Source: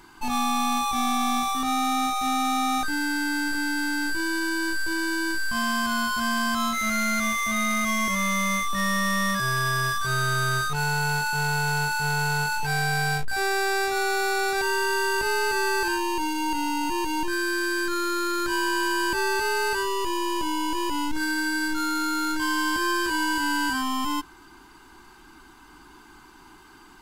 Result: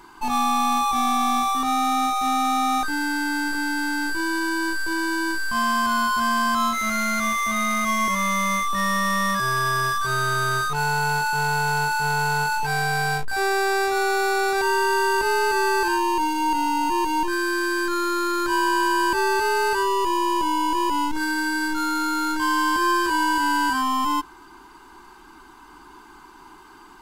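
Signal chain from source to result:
graphic EQ with 15 bands 100 Hz −5 dB, 400 Hz +4 dB, 1,000 Hz +7 dB

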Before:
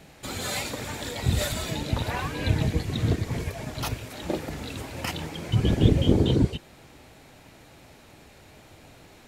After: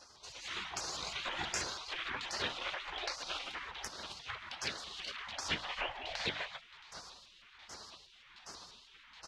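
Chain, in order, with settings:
formants moved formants −2 semitones
high-shelf EQ 3,300 Hz +8.5 dB
auto-filter low-pass saw down 1.3 Hz 430–3,800 Hz
meter weighting curve D
downward compressor 8 to 1, threshold −27 dBFS, peak gain reduction 15.5 dB
on a send: repeating echo 670 ms, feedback 22%, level −22 dB
on the sum: automatic gain control gain up to 9.5 dB
tuned comb filter 230 Hz, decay 0.24 s, harmonics all, mix 50%
gate on every frequency bin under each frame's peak −20 dB weak
mains-hum notches 50/100/150/200/250/300 Hz
pitch modulation by a square or saw wave saw up 6.2 Hz, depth 160 cents
level +3 dB

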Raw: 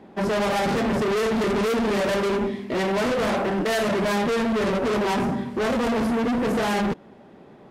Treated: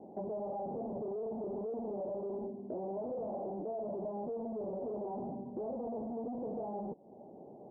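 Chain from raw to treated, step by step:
Butterworth low-pass 790 Hz 48 dB per octave
spectral tilt +3.5 dB per octave
downward compressor 3 to 1, threshold −43 dBFS, peak gain reduction 13 dB
level +1.5 dB

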